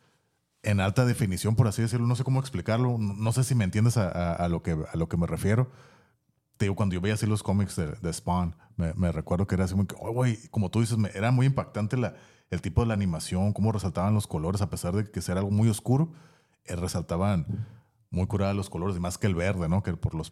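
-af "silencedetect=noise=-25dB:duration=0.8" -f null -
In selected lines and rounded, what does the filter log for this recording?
silence_start: 5.64
silence_end: 6.61 | silence_duration: 0.98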